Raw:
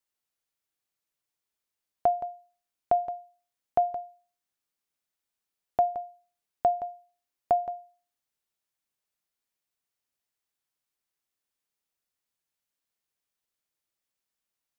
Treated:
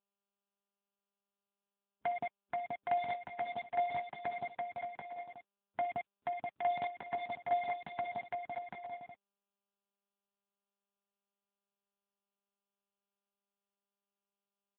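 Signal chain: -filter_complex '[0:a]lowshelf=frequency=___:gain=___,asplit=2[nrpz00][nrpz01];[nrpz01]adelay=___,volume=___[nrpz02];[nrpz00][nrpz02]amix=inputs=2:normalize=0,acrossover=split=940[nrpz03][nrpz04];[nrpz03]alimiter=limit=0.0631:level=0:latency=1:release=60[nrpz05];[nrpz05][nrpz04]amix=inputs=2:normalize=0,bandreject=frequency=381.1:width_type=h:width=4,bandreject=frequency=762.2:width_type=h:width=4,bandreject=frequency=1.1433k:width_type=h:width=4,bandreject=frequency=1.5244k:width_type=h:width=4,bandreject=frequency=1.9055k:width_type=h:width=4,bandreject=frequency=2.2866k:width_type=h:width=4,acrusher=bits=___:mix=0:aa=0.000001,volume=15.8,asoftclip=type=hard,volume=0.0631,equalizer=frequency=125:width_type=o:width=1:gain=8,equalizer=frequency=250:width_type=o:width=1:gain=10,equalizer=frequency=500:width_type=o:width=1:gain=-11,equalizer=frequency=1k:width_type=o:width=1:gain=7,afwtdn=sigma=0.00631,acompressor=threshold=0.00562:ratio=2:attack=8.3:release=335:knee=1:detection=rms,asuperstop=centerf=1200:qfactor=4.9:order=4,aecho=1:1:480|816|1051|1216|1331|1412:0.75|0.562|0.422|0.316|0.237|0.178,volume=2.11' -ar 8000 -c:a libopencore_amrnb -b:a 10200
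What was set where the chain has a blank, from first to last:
120, 7.5, 19, 0.282, 5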